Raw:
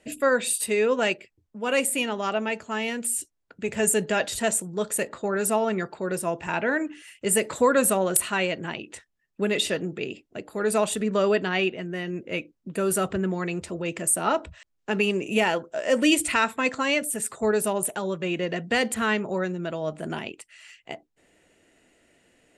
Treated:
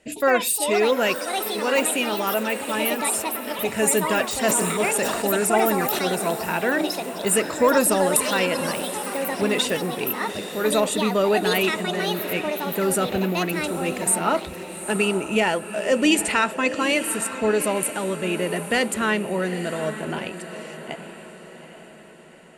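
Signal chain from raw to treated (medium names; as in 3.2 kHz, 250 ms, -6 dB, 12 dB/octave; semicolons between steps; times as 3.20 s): echo that smears into a reverb 834 ms, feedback 47%, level -11 dB; in parallel at -10.5 dB: saturation -16 dBFS, distortion -16 dB; on the sum: ever faster or slower copies 116 ms, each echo +6 st, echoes 2, each echo -6 dB; 4.30–5.99 s: decay stretcher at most 31 dB/s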